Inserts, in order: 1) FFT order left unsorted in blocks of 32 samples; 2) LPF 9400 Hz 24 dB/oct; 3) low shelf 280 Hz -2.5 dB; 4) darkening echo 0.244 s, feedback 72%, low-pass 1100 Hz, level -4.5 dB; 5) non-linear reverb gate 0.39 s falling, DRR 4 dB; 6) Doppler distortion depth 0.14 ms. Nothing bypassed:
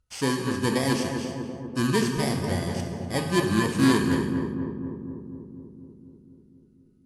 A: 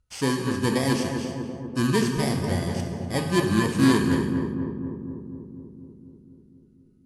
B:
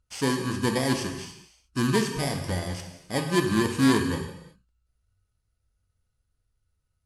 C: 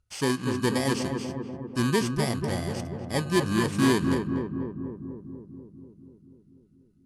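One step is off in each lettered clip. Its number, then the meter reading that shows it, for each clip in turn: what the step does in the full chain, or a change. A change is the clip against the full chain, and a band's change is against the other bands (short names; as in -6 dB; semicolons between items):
3, loudness change +1.0 LU; 4, momentary loudness spread change -3 LU; 5, loudness change -1.5 LU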